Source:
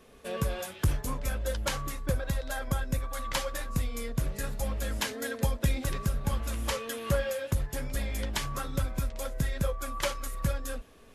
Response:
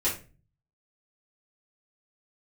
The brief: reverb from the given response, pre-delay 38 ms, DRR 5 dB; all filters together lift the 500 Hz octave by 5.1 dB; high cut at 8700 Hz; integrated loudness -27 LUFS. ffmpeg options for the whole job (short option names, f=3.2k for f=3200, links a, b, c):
-filter_complex "[0:a]lowpass=8.7k,equalizer=f=500:t=o:g=5.5,asplit=2[a][b];[1:a]atrim=start_sample=2205,adelay=38[c];[b][c]afir=irnorm=-1:irlink=0,volume=-14dB[d];[a][d]amix=inputs=2:normalize=0,volume=3dB"